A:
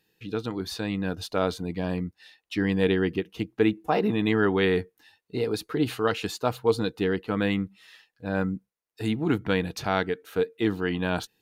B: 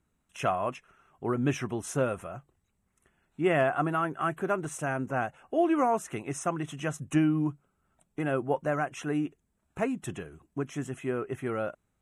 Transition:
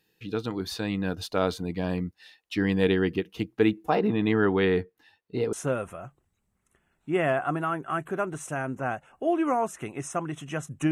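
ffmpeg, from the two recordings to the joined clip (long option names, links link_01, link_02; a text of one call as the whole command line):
ffmpeg -i cue0.wav -i cue1.wav -filter_complex "[0:a]asettb=1/sr,asplit=3[link_01][link_02][link_03];[link_01]atrim=end=3.954[link_04];[link_02]atrim=start=3.95:end=5.53,asetpts=PTS-STARTPTS,afade=type=in:duration=0.004:curve=qsin,afade=type=out:start_time=1.576:duration=0.004:curve=qsin,highshelf=frequency=4200:gain=-11[link_05];[link_03]atrim=start=5.526[link_06];[link_04][link_05]acrossfade=duration=0.004:curve1=hsin:curve2=qsin[link_07];[link_07][link_06]acrossfade=duration=0.004:curve1=qsin:curve2=hsin,apad=whole_dur=10.91,atrim=end=10.91,atrim=end=5.532[link_08];[1:a]atrim=start=1.838:end=7.22[link_09];[link_08][link_09]acrossfade=duration=0.004:curve1=hsin:curve2=hsin" out.wav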